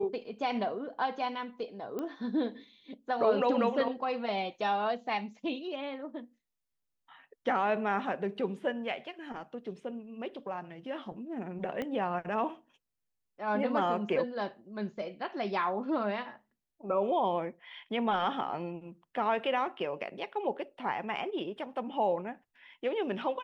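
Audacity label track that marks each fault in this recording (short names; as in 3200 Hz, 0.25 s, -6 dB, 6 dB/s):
1.990000	1.990000	pop -24 dBFS
11.820000	11.820000	pop -23 dBFS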